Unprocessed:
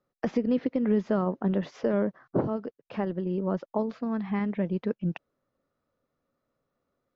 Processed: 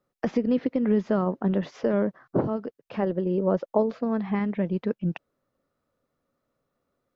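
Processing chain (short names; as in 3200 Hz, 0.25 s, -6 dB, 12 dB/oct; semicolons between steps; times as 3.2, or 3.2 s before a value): 3.02–4.35 bell 520 Hz +7 dB 0.94 oct; gain +2 dB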